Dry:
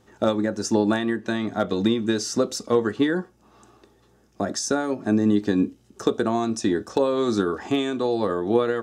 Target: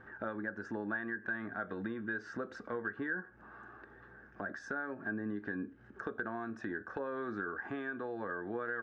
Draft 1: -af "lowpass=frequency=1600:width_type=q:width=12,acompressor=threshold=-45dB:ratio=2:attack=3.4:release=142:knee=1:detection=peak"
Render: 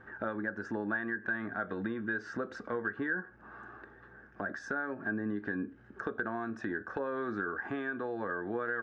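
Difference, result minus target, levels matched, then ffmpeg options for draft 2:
downward compressor: peak gain reduction −3.5 dB
-af "lowpass=frequency=1600:width_type=q:width=12,acompressor=threshold=-52dB:ratio=2:attack=3.4:release=142:knee=1:detection=peak"

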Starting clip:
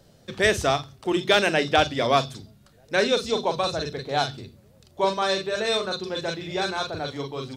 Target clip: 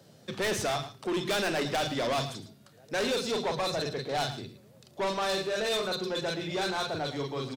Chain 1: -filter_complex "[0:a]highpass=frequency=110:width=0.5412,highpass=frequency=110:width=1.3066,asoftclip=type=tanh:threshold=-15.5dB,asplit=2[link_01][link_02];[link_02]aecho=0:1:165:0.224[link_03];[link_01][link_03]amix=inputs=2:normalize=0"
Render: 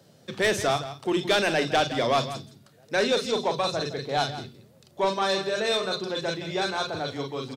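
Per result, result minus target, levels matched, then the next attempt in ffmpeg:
echo 54 ms late; soft clipping: distortion −8 dB
-filter_complex "[0:a]highpass=frequency=110:width=0.5412,highpass=frequency=110:width=1.3066,asoftclip=type=tanh:threshold=-15.5dB,asplit=2[link_01][link_02];[link_02]aecho=0:1:111:0.224[link_03];[link_01][link_03]amix=inputs=2:normalize=0"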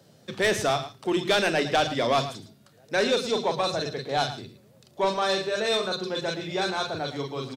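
soft clipping: distortion −8 dB
-filter_complex "[0:a]highpass=frequency=110:width=0.5412,highpass=frequency=110:width=1.3066,asoftclip=type=tanh:threshold=-26dB,asplit=2[link_01][link_02];[link_02]aecho=0:1:111:0.224[link_03];[link_01][link_03]amix=inputs=2:normalize=0"

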